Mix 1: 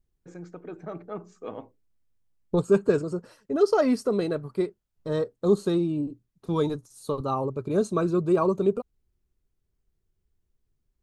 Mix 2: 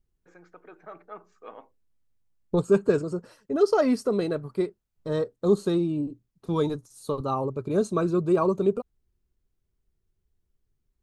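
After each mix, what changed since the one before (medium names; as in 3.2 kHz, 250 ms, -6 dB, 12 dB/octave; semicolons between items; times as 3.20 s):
first voice: add band-pass filter 1.5 kHz, Q 0.85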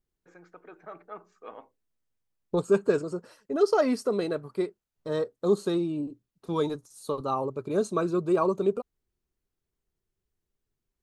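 second voice: add bass shelf 170 Hz -11.5 dB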